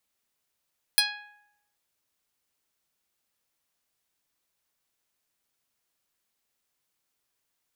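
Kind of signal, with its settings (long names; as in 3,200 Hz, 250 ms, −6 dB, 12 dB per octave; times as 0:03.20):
Karplus-Strong string G#5, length 0.78 s, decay 0.87 s, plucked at 0.12, medium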